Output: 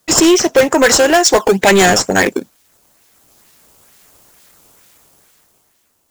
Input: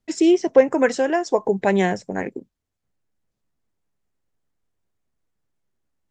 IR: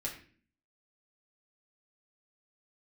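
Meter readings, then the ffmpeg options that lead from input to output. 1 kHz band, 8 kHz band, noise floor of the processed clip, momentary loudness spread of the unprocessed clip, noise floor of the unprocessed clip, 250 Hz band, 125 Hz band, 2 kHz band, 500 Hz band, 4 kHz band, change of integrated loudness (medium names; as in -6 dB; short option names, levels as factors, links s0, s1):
+11.0 dB, +23.5 dB, -61 dBFS, 12 LU, -81 dBFS, +6.0 dB, +7.5 dB, +13.5 dB, +7.0 dB, +20.5 dB, +9.0 dB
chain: -filter_complex "[0:a]highpass=57,lowshelf=f=230:g=-10,dynaudnorm=f=200:g=11:m=5.62,crystalizer=i=7:c=0,asplit=2[s0][s1];[s1]acrusher=samples=13:mix=1:aa=0.000001:lfo=1:lforange=20.8:lforate=2.2,volume=0.501[s2];[s0][s2]amix=inputs=2:normalize=0,asoftclip=type=tanh:threshold=0.237,volume=2.51"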